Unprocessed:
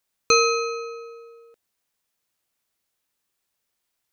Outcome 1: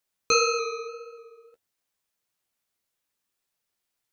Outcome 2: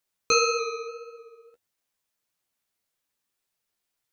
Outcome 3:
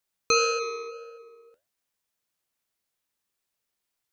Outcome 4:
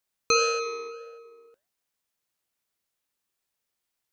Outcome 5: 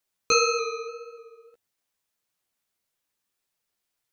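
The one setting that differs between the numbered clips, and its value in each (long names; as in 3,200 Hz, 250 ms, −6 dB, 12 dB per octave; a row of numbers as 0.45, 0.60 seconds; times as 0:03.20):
flanger, regen: −25, +21, +75, −83, −1%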